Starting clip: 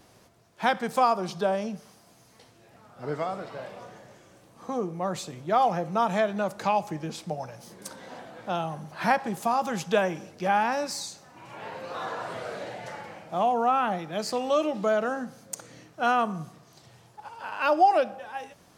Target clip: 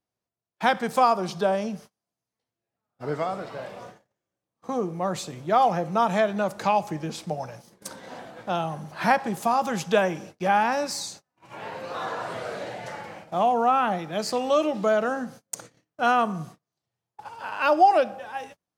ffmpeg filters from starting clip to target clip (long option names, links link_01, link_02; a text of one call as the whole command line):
ffmpeg -i in.wav -af "agate=range=-34dB:threshold=-45dB:ratio=16:detection=peak,volume=2.5dB" out.wav